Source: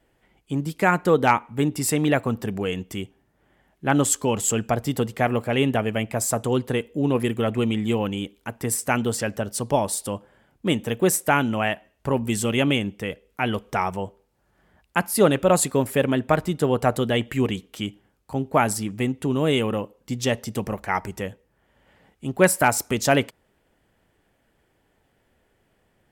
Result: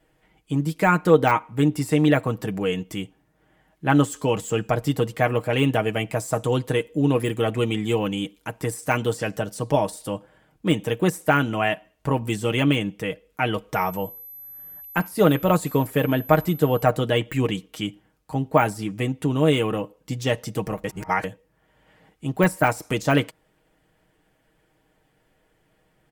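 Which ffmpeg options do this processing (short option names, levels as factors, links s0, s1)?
-filter_complex "[0:a]asettb=1/sr,asplit=3[s0][s1][s2];[s0]atrim=end=5.534[s3];[s1]atrim=start=5.53:end=9.6,asetpts=PTS-STARTPTS,afade=t=in:d=0.004:c=qsin,afade=t=out:st=4.066:d=0.004:c=qsin,equalizer=f=8000:w=0.53:g=3.5[s4];[s2]atrim=start=9.596[s5];[s3][s4]acrossfade=d=0.004:c1=hsin:c2=qsin[s6];[s6][s5]acrossfade=d=0.004:c1=qsin:c2=hsin,asettb=1/sr,asplit=3[s7][s8][s9];[s7]atrim=end=13.744[s10];[s8]atrim=start=13.74:end=16.83,asetpts=PTS-STARTPTS,afade=t=in:d=0.004:c=qsin,afade=t=out:st=3.086:d=0.004:c=qsin,aeval=exprs='val(0)+0.0112*sin(2*PI*12000*n/s)':c=same[s11];[s9]atrim=start=16.826[s12];[s10][s11]acrossfade=d=0.004:c1=hsin:c2=qsin[s13];[s13][s12]acrossfade=d=0.004:c1=qsin:c2=hsin,asplit=3[s14][s15][s16];[s14]atrim=end=20.842[s17];[s15]atrim=start=20.838:end=21.242,asetpts=PTS-STARTPTS,areverse[s18];[s16]atrim=start=21.238[s19];[s17][s18]acrossfade=d=0.004:c1=hsin:c2=hsin[s20];[s20][s19]acrossfade=d=0.004:c1=hsin:c2=hsin,deesser=0.65,aecho=1:1:6.4:0.57"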